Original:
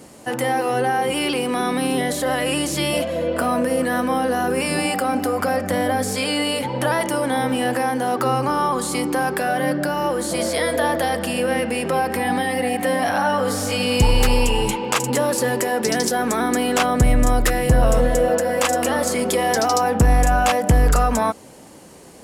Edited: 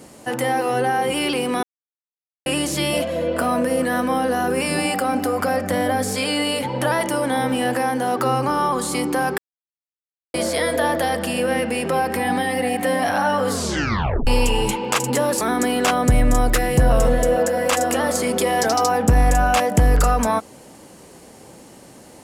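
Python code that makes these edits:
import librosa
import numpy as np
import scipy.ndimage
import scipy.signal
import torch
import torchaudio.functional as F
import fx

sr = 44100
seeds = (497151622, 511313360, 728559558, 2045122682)

y = fx.edit(x, sr, fx.silence(start_s=1.63, length_s=0.83),
    fx.silence(start_s=9.38, length_s=0.96),
    fx.tape_stop(start_s=13.5, length_s=0.77),
    fx.cut(start_s=15.41, length_s=0.92), tone=tone)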